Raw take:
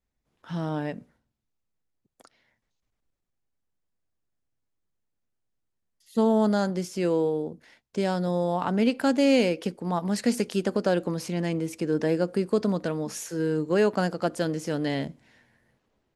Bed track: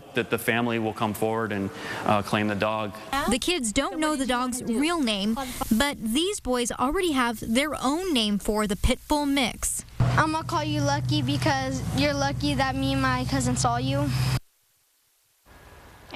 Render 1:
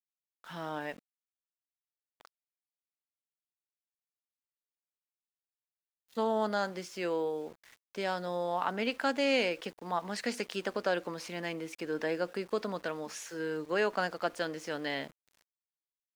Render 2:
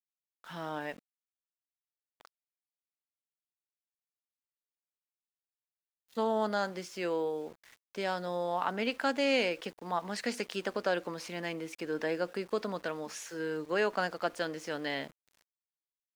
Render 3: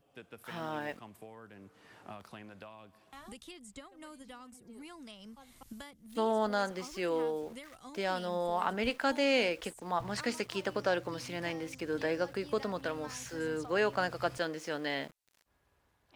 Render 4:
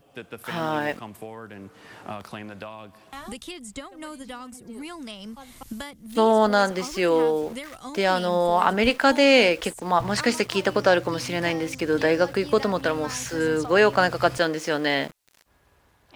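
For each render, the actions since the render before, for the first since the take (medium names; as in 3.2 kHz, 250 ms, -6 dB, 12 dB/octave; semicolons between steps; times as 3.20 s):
band-pass filter 1.9 kHz, Q 0.58; small samples zeroed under -53 dBFS
no audible change
add bed track -25 dB
trim +12 dB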